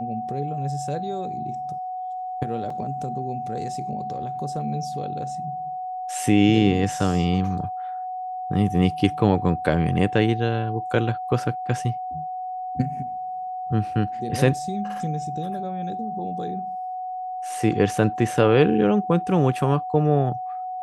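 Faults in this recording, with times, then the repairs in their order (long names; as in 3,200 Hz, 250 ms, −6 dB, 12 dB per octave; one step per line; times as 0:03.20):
whistle 740 Hz −28 dBFS
0:02.70: drop-out 3.9 ms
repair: notch filter 740 Hz, Q 30
repair the gap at 0:02.70, 3.9 ms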